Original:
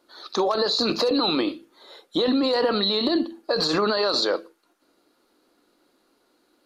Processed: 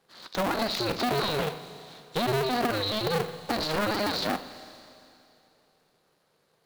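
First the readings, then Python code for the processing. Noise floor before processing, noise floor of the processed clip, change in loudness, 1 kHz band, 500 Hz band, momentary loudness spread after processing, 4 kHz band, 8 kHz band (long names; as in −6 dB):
−67 dBFS, −70 dBFS, −5.5 dB, −1.0 dB, −6.0 dB, 16 LU, −7.0 dB, −1.0 dB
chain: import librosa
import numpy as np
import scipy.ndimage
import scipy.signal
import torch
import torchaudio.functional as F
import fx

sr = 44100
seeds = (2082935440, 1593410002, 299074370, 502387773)

y = fx.cycle_switch(x, sr, every=2, mode='inverted')
y = fx.rev_schroeder(y, sr, rt60_s=2.7, comb_ms=31, drr_db=13.0)
y = fx.dynamic_eq(y, sr, hz=6900.0, q=0.86, threshold_db=-41.0, ratio=4.0, max_db=-6)
y = F.gain(torch.from_numpy(y), -5.0).numpy()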